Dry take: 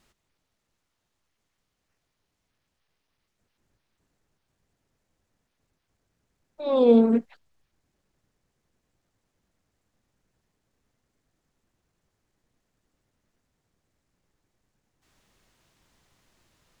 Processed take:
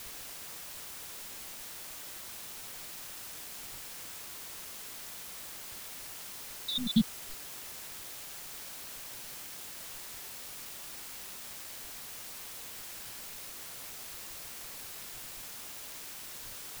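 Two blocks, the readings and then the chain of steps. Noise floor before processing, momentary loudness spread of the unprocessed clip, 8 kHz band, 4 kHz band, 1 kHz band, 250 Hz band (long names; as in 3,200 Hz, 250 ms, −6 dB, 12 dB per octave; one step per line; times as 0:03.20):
−79 dBFS, 11 LU, can't be measured, +12.0 dB, −8.0 dB, −10.5 dB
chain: time-frequency cells dropped at random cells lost 84%
inverse Chebyshev band-stop filter 310–1,600 Hz, stop band 50 dB
in parallel at −11.5 dB: bit-depth reduction 8 bits, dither triangular
on the sum: level +15 dB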